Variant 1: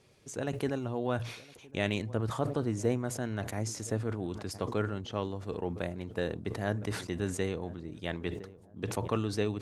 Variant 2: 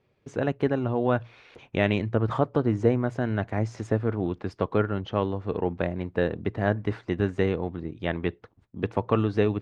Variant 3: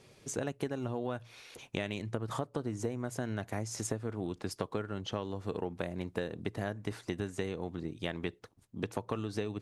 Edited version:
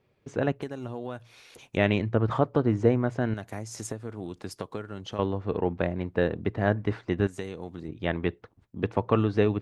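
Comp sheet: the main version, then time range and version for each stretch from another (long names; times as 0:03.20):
2
0:00.62–0:01.77: punch in from 3
0:03.34–0:05.19: punch in from 3
0:07.27–0:07.88: punch in from 3
not used: 1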